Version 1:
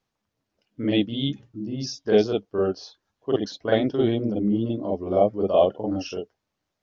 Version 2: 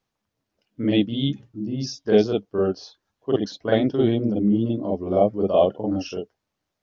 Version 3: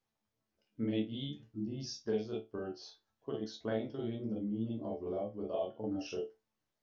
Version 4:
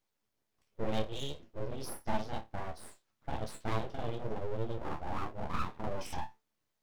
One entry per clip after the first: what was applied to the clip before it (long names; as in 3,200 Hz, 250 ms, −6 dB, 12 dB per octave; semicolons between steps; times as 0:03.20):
dynamic equaliser 170 Hz, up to +4 dB, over −37 dBFS, Q 0.77
downward compressor 5 to 1, threshold −27 dBFS, peak gain reduction 14.5 dB; resonators tuned to a chord D2 fifth, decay 0.22 s; level +1 dB
full-wave rectification; level +4 dB